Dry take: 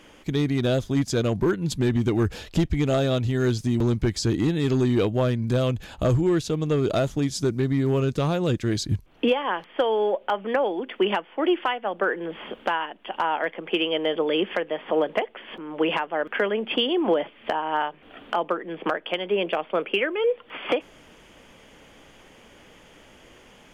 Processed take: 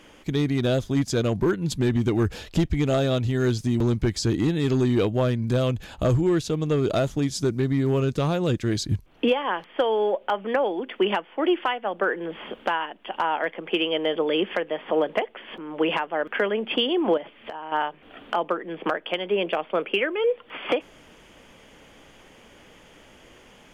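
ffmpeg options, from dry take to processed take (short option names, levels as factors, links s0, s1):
-filter_complex "[0:a]asettb=1/sr,asplit=3[s0][s1][s2];[s0]atrim=end=17.174[s3];[s1]atrim=start=17.17:end=17.72,asetpts=PTS-STARTPTS,afade=t=in:d=0.004:c=qsin,afade=t=out:st=0.546:d=0.004:c=qsin,acompressor=threshold=0.0282:ratio=6:attack=3.2:release=140:knee=1:detection=peak[s4];[s2]atrim=start=17.716[s5];[s3][s4]acrossfade=d=0.004:c1=hsin:c2=qsin[s6];[s6][s5]acrossfade=d=0.004:c1=qsin:c2=hsin"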